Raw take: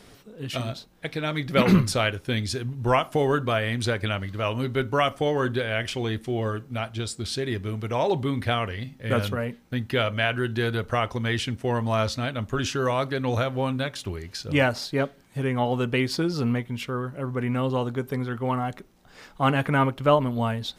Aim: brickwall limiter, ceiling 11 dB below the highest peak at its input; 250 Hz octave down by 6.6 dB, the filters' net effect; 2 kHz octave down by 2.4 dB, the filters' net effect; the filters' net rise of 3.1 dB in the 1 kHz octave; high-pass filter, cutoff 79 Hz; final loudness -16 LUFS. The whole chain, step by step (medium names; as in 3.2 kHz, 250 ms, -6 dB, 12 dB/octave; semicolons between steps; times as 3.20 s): high-pass 79 Hz; peaking EQ 250 Hz -9 dB; peaking EQ 1 kHz +6 dB; peaking EQ 2 kHz -5.5 dB; trim +13 dB; peak limiter -3 dBFS